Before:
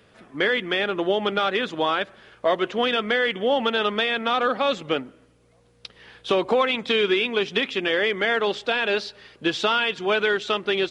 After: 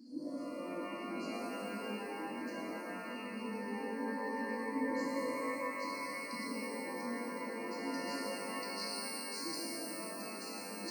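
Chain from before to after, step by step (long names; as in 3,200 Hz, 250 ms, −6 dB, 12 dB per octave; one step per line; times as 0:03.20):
slices reordered back to front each 115 ms, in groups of 5
brickwall limiter −20.5 dBFS, peak gain reduction 10.5 dB
reversed playback
downward compressor, threshold −42 dBFS, peak gain reduction 16 dB
reversed playback
formant filter i
spectral tilt +2.5 dB per octave
brick-wall band-stop 360–4,100 Hz
high-shelf EQ 3,100 Hz +5.5 dB
reverb with rising layers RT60 3 s, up +12 semitones, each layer −2 dB, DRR −7 dB
level +14 dB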